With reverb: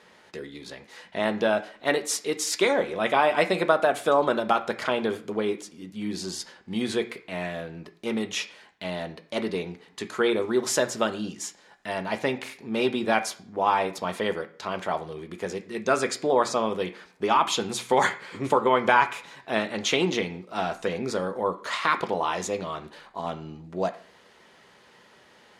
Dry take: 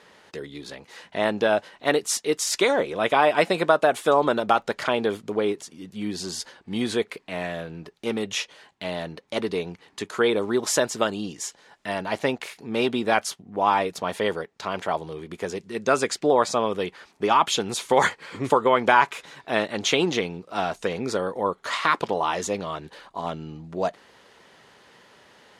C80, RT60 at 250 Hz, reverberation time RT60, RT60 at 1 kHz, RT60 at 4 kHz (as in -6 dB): 18.5 dB, 0.60 s, 0.55 s, 0.50 s, 0.50 s